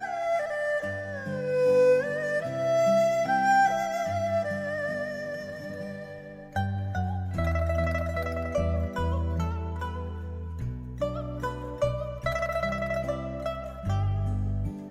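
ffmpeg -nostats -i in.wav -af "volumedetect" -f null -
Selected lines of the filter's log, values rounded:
mean_volume: -27.9 dB
max_volume: -13.1 dB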